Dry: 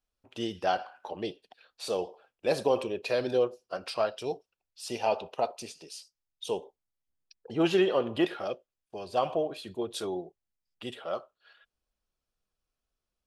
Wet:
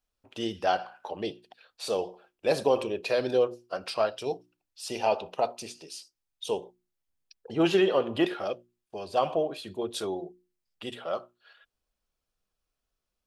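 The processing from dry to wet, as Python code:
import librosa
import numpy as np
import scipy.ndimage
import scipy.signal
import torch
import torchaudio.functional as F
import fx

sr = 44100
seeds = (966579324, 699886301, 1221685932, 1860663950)

y = fx.hum_notches(x, sr, base_hz=60, count=6)
y = y * 10.0 ** (2.0 / 20.0)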